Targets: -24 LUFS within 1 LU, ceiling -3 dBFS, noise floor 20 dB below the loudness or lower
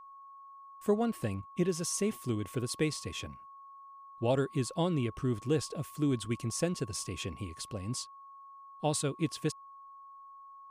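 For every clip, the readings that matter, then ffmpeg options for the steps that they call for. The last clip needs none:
steady tone 1100 Hz; tone level -49 dBFS; loudness -34.0 LUFS; peak -17.0 dBFS; loudness target -24.0 LUFS
-> -af "bandreject=f=1.1k:w=30"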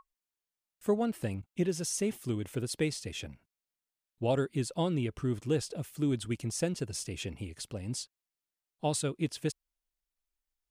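steady tone none; loudness -34.0 LUFS; peak -17.0 dBFS; loudness target -24.0 LUFS
-> -af "volume=10dB"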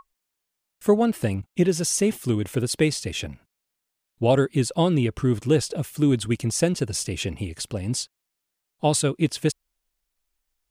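loudness -24.0 LUFS; peak -7.0 dBFS; noise floor -82 dBFS

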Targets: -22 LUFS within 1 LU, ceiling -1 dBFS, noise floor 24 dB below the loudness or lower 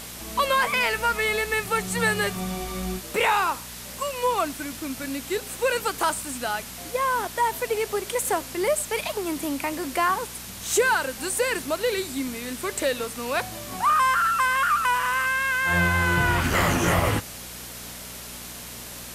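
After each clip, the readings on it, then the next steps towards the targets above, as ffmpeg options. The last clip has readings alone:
hum 60 Hz; harmonics up to 240 Hz; hum level -44 dBFS; noise floor -39 dBFS; noise floor target -49 dBFS; loudness -24.5 LUFS; peak -10.0 dBFS; loudness target -22.0 LUFS
-> -af "bandreject=f=60:t=h:w=4,bandreject=f=120:t=h:w=4,bandreject=f=180:t=h:w=4,bandreject=f=240:t=h:w=4"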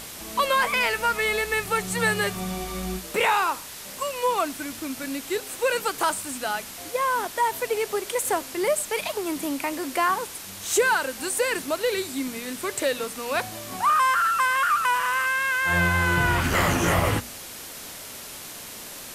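hum none; noise floor -39 dBFS; noise floor target -49 dBFS
-> -af "afftdn=nr=10:nf=-39"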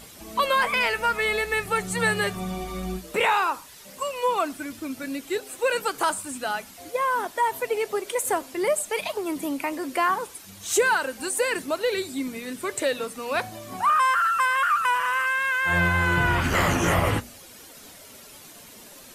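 noise floor -47 dBFS; noise floor target -49 dBFS
-> -af "afftdn=nr=6:nf=-47"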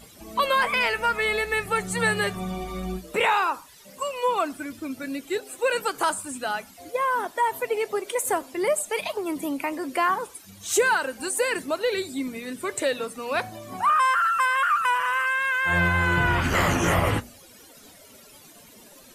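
noise floor -50 dBFS; loudness -24.5 LUFS; peak -10.5 dBFS; loudness target -22.0 LUFS
-> -af "volume=2.5dB"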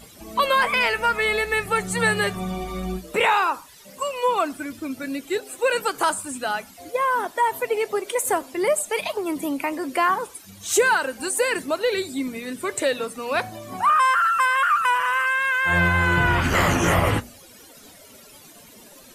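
loudness -22.0 LUFS; peak -8.0 dBFS; noise floor -48 dBFS

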